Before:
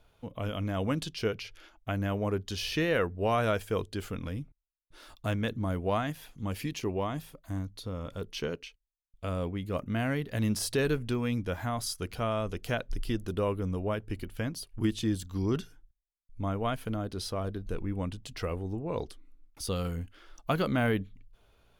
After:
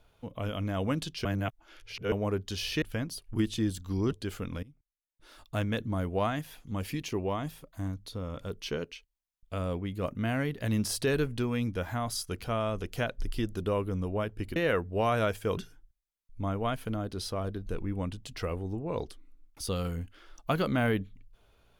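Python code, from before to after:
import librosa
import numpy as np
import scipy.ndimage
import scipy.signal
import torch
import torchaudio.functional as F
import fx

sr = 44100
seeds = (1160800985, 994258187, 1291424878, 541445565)

y = fx.edit(x, sr, fx.reverse_span(start_s=1.25, length_s=0.87),
    fx.swap(start_s=2.82, length_s=1.01, other_s=14.27, other_length_s=1.3),
    fx.fade_in_from(start_s=4.34, length_s=0.96, floor_db=-20.5), tone=tone)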